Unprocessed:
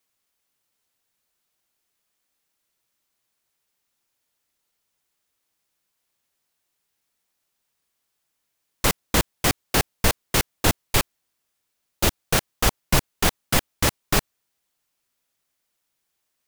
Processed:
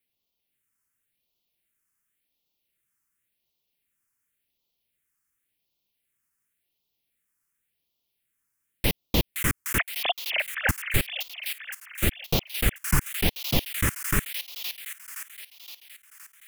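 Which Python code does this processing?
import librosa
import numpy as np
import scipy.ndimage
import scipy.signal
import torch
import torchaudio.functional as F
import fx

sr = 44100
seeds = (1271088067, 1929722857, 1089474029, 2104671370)

y = fx.sine_speech(x, sr, at=(9.78, 10.69))
y = fx.echo_wet_highpass(y, sr, ms=518, feedback_pct=56, hz=2100.0, wet_db=-4.0)
y = fx.phaser_stages(y, sr, stages=4, low_hz=620.0, high_hz=1600.0, hz=0.91, feedback_pct=25)
y = F.gain(torch.from_numpy(y), -2.0).numpy()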